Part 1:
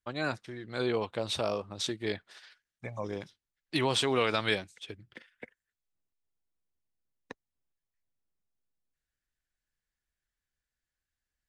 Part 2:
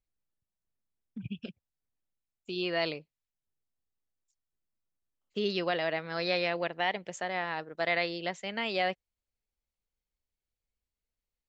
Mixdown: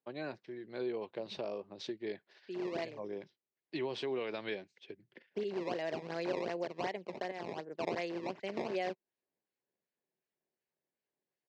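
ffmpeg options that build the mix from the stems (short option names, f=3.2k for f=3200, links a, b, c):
-filter_complex "[0:a]volume=-7.5dB,asplit=2[a][b];[1:a]acrusher=samples=17:mix=1:aa=0.000001:lfo=1:lforange=27.2:lforate=2.7,volume=-2dB[c];[b]apad=whole_len=511013[d];[c][d]sidechaincompress=threshold=-52dB:ratio=8:attack=16:release=642[e];[a][e]amix=inputs=2:normalize=0,highpass=f=140:w=0.5412,highpass=f=140:w=1.3066,equalizer=f=380:t=q:w=4:g=8,equalizer=f=580:t=q:w=4:g=3,equalizer=f=1.3k:t=q:w=4:g=-9,equalizer=f=3.5k:t=q:w=4:g=-6,lowpass=f=4.7k:w=0.5412,lowpass=f=4.7k:w=1.3066,acompressor=threshold=-37dB:ratio=2"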